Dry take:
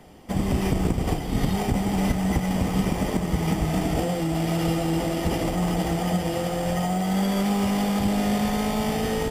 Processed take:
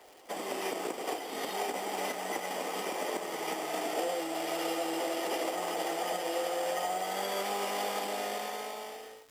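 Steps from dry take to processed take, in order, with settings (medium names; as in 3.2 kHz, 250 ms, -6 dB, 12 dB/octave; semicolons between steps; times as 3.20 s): fade out at the end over 1.33 s; high-pass 390 Hz 24 dB/octave; crackle 330 per s -42 dBFS; trim -3.5 dB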